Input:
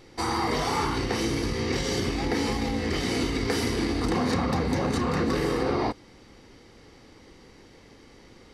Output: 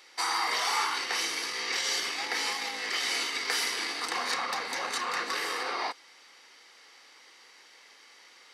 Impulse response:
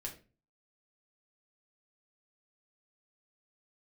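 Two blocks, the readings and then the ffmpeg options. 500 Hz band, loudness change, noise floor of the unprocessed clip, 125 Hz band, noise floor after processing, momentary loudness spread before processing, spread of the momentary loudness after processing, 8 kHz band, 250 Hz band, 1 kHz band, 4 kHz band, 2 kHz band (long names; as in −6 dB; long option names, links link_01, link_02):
−13.0 dB, −2.5 dB, −52 dBFS, below −30 dB, −56 dBFS, 2 LU, 4 LU, +3.5 dB, −21.5 dB, −2.0 dB, +3.5 dB, +3.0 dB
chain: -af "highpass=1200,volume=3.5dB"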